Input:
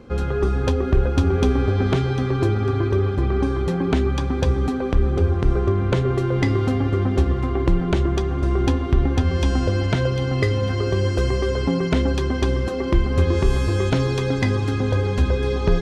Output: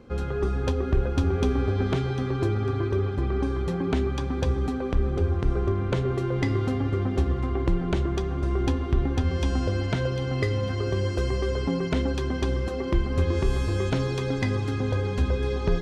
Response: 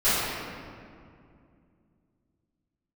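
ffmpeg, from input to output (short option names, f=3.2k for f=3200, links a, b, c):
-filter_complex "[0:a]asplit=2[a][b];[1:a]atrim=start_sample=2205,adelay=29[c];[b][c]afir=irnorm=-1:irlink=0,volume=-34.5dB[d];[a][d]amix=inputs=2:normalize=0,volume=-5.5dB"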